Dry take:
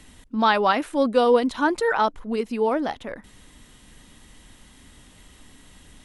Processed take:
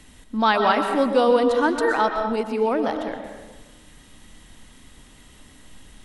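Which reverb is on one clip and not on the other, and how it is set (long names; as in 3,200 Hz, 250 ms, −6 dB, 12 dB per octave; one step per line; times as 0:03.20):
comb and all-pass reverb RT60 1.3 s, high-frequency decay 0.6×, pre-delay 85 ms, DRR 5 dB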